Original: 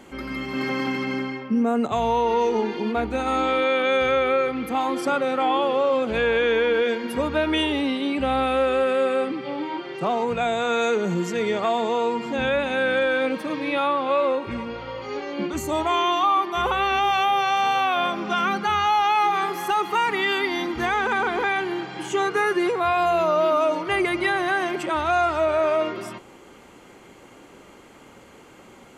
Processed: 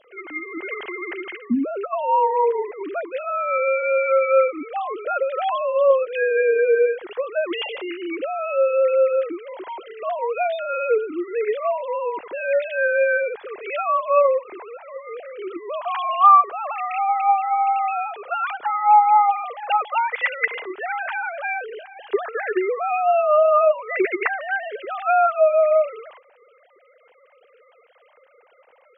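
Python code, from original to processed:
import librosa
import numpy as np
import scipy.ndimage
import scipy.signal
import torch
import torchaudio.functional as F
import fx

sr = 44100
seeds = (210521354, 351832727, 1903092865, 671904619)

y = fx.sine_speech(x, sr)
y = y * 10.0 ** (1.5 / 20.0)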